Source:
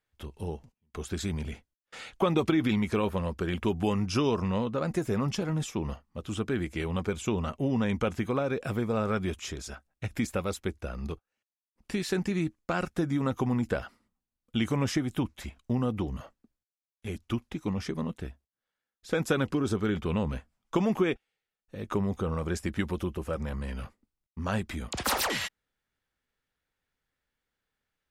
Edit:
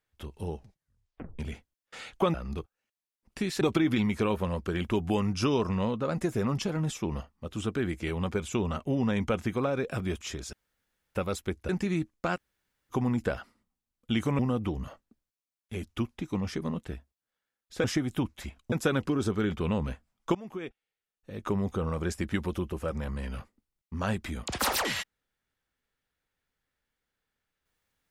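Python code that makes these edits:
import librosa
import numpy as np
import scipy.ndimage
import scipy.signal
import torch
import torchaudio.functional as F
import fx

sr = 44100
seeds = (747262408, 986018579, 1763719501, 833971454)

y = fx.edit(x, sr, fx.tape_stop(start_s=0.55, length_s=0.84),
    fx.cut(start_s=8.73, length_s=0.45),
    fx.room_tone_fill(start_s=9.71, length_s=0.62),
    fx.move(start_s=10.87, length_s=1.27, to_s=2.34),
    fx.room_tone_fill(start_s=12.81, length_s=0.55, crossfade_s=0.04),
    fx.move(start_s=14.84, length_s=0.88, to_s=19.17),
    fx.fade_in_from(start_s=20.8, length_s=1.26, floor_db=-21.0), tone=tone)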